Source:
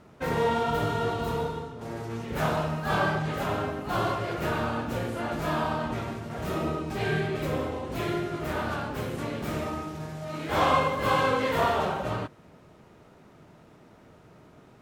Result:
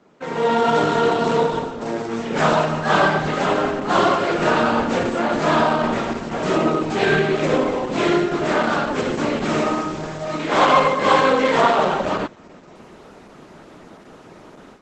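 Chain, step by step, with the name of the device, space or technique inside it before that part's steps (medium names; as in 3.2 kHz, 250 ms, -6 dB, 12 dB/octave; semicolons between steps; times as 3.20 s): video call (high-pass 180 Hz 24 dB/octave; level rider gain up to 13 dB; Opus 12 kbps 48 kHz)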